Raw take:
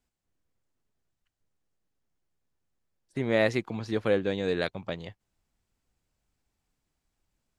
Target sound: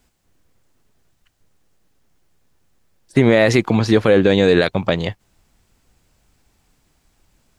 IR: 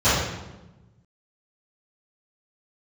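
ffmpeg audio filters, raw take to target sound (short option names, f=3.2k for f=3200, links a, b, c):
-af "alimiter=level_in=19.5dB:limit=-1dB:release=50:level=0:latency=1,volume=-1dB"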